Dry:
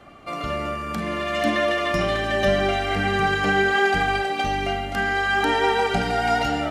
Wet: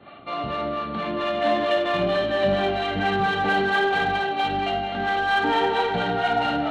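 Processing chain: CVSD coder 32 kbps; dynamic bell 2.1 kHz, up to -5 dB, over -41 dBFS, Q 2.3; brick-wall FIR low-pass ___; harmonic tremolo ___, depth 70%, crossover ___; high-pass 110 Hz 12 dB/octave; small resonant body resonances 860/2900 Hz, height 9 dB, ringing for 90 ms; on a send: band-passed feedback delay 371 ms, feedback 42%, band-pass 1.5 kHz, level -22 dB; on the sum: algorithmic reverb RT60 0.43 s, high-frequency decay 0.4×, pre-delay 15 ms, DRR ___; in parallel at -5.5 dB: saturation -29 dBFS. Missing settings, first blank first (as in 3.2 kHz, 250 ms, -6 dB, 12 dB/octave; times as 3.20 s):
4.4 kHz, 4.4 Hz, 440 Hz, 4 dB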